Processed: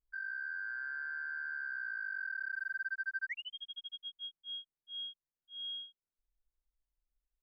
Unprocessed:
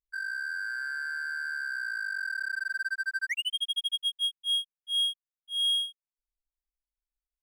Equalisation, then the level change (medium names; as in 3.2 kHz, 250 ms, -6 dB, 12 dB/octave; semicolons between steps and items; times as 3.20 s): tape spacing loss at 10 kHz 43 dB; tilt EQ -1.5 dB/octave; +1.5 dB